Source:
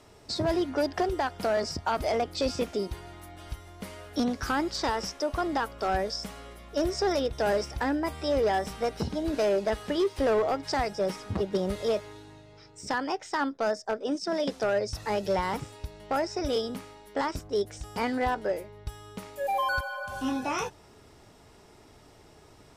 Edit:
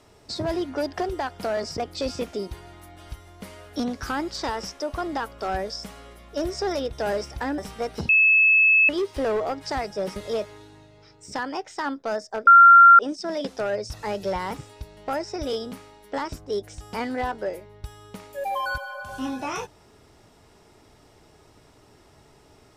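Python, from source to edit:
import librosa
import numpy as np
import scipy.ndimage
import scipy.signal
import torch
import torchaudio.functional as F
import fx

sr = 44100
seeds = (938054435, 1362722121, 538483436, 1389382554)

y = fx.edit(x, sr, fx.cut(start_s=1.78, length_s=0.4),
    fx.cut(start_s=7.98, length_s=0.62),
    fx.bleep(start_s=9.11, length_s=0.8, hz=2600.0, db=-13.5),
    fx.cut(start_s=11.18, length_s=0.53),
    fx.insert_tone(at_s=14.02, length_s=0.52, hz=1380.0, db=-7.0), tone=tone)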